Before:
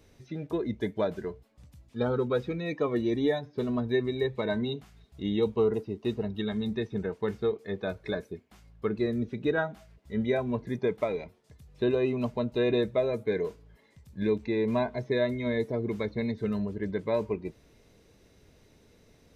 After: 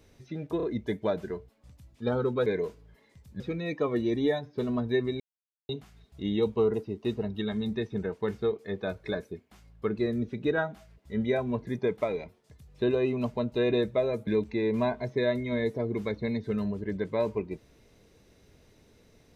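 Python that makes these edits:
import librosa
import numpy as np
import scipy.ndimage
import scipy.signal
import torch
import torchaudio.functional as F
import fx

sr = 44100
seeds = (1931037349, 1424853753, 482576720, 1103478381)

y = fx.edit(x, sr, fx.stutter(start_s=0.57, slice_s=0.03, count=3),
    fx.silence(start_s=4.2, length_s=0.49),
    fx.move(start_s=13.27, length_s=0.94, to_s=2.4), tone=tone)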